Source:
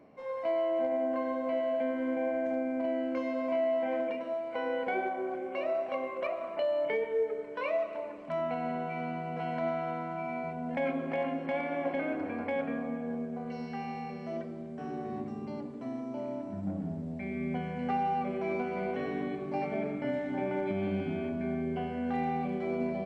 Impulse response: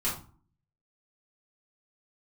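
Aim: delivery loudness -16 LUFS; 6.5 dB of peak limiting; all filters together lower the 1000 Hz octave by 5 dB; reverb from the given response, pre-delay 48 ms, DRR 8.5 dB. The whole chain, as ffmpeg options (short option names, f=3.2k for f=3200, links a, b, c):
-filter_complex "[0:a]equalizer=f=1k:t=o:g=-8,alimiter=level_in=4dB:limit=-24dB:level=0:latency=1,volume=-4dB,asplit=2[a][b];[1:a]atrim=start_sample=2205,adelay=48[c];[b][c]afir=irnorm=-1:irlink=0,volume=-15.5dB[d];[a][d]amix=inputs=2:normalize=0,volume=21.5dB"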